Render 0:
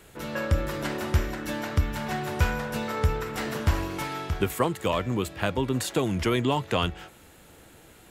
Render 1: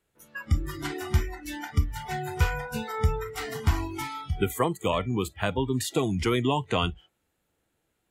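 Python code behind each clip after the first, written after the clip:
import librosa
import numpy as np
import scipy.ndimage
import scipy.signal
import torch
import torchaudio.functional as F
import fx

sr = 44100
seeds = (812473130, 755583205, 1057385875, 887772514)

y = fx.noise_reduce_blind(x, sr, reduce_db=24)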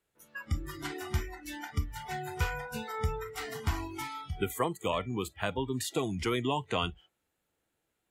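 y = fx.low_shelf(x, sr, hz=280.0, db=-4.5)
y = y * 10.0 ** (-4.0 / 20.0)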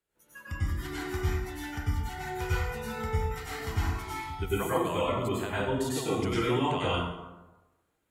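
y = fx.rev_plate(x, sr, seeds[0], rt60_s=1.1, hf_ratio=0.55, predelay_ms=85, drr_db=-9.0)
y = y * 10.0 ** (-6.5 / 20.0)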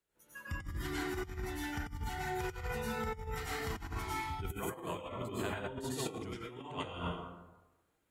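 y = fx.over_compress(x, sr, threshold_db=-33.0, ratio=-0.5)
y = y * 10.0 ** (-5.0 / 20.0)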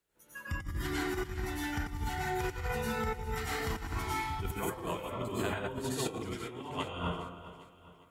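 y = fx.echo_feedback(x, sr, ms=405, feedback_pct=46, wet_db=-14.5)
y = y * 10.0 ** (3.5 / 20.0)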